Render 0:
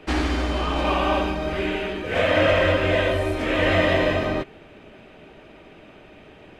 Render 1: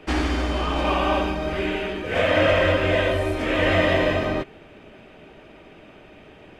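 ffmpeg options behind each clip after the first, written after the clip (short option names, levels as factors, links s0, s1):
-af "bandreject=f=4000:w=23"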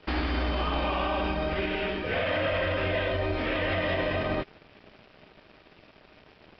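-af "equalizer=f=340:t=o:w=0.91:g=-3,alimiter=limit=0.112:level=0:latency=1:release=47,aresample=11025,aeval=exprs='sgn(val(0))*max(abs(val(0))-0.00376,0)':c=same,aresample=44100"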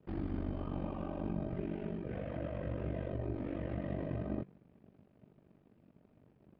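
-af "bandpass=f=160:t=q:w=1.4:csg=0,bandreject=f=168.9:t=h:w=4,bandreject=f=337.8:t=h:w=4,bandreject=f=506.7:t=h:w=4,bandreject=f=675.6:t=h:w=4,bandreject=f=844.5:t=h:w=4,bandreject=f=1013.4:t=h:w=4,bandreject=f=1182.3:t=h:w=4,bandreject=f=1351.2:t=h:w=4,bandreject=f=1520.1:t=h:w=4,bandreject=f=1689:t=h:w=4,bandreject=f=1857.9:t=h:w=4,bandreject=f=2026.8:t=h:w=4,bandreject=f=2195.7:t=h:w=4,bandreject=f=2364.6:t=h:w=4,bandreject=f=2533.5:t=h:w=4,bandreject=f=2702.4:t=h:w=4,bandreject=f=2871.3:t=h:w=4,bandreject=f=3040.2:t=h:w=4,bandreject=f=3209.1:t=h:w=4,bandreject=f=3378:t=h:w=4,bandreject=f=3546.9:t=h:w=4,bandreject=f=3715.8:t=h:w=4,bandreject=f=3884.7:t=h:w=4,bandreject=f=4053.6:t=h:w=4,bandreject=f=4222.5:t=h:w=4,bandreject=f=4391.4:t=h:w=4,bandreject=f=4560.3:t=h:w=4,bandreject=f=4729.2:t=h:w=4,aeval=exprs='val(0)*sin(2*PI*24*n/s)':c=same,volume=1.33"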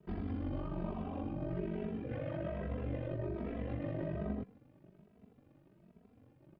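-filter_complex "[0:a]alimiter=level_in=2.11:limit=0.0631:level=0:latency=1:release=44,volume=0.473,asplit=2[s0][s1];[s1]adelay=2.7,afreqshift=1.2[s2];[s0][s2]amix=inputs=2:normalize=1,volume=1.68"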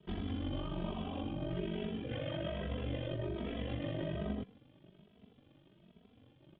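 -af "lowpass=f=3300:t=q:w=11"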